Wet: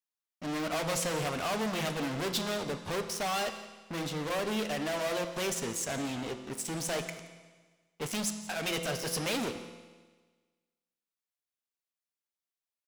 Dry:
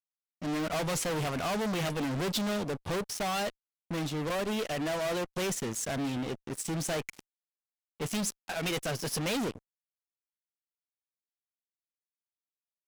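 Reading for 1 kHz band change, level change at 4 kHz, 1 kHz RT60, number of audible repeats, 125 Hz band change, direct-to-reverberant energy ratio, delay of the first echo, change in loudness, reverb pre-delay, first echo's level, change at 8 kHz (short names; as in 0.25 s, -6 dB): 0.0 dB, +1.0 dB, 1.4 s, 1, -3.5 dB, 7.0 dB, 0.174 s, -0.5 dB, 6 ms, -19.0 dB, +0.5 dB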